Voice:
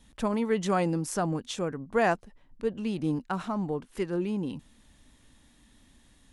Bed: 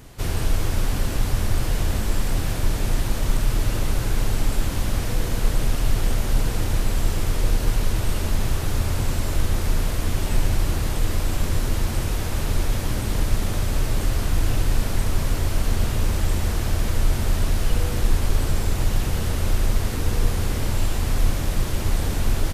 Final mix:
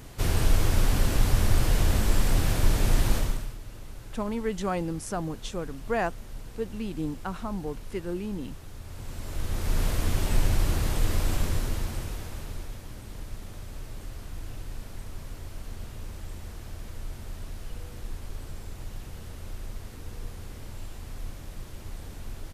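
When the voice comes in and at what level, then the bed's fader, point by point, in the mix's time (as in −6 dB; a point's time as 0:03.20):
3.95 s, −3.0 dB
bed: 0:03.16 −0.5 dB
0:03.58 −20 dB
0:08.80 −20 dB
0:09.84 −3 dB
0:11.33 −3 dB
0:12.83 −17.5 dB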